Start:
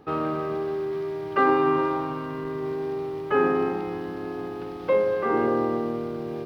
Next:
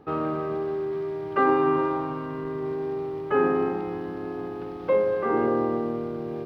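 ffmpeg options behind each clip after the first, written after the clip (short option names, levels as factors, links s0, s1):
-af "highshelf=f=2600:g=-8"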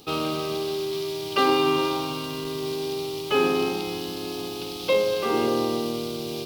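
-af "aexciter=amount=14.1:drive=8.2:freq=2800"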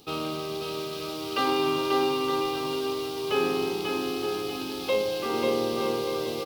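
-af "aecho=1:1:540|918|1183|1368|1497:0.631|0.398|0.251|0.158|0.1,volume=0.596"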